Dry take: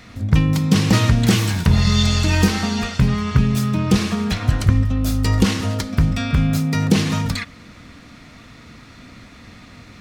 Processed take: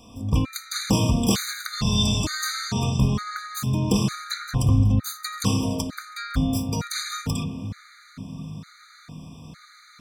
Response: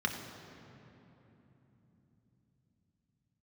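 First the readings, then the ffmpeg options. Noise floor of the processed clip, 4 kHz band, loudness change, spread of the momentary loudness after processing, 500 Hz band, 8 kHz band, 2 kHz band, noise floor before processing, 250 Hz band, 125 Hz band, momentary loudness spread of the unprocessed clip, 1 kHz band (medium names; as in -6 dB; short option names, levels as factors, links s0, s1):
-51 dBFS, -3.0 dB, -6.5 dB, 18 LU, -5.5 dB, -1.0 dB, -7.0 dB, -43 dBFS, -6.5 dB, -7.0 dB, 6 LU, -4.5 dB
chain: -filter_complex "[0:a]highshelf=f=3100:g=8,asplit=2[s0][s1];[1:a]atrim=start_sample=2205,lowpass=4000[s2];[s1][s2]afir=irnorm=-1:irlink=0,volume=0.282[s3];[s0][s3]amix=inputs=2:normalize=0,afftfilt=real='re*gt(sin(2*PI*1.1*pts/sr)*(1-2*mod(floor(b*sr/1024/1200),2)),0)':imag='im*gt(sin(2*PI*1.1*pts/sr)*(1-2*mod(floor(b*sr/1024/1200),2)),0)':win_size=1024:overlap=0.75,volume=0.562"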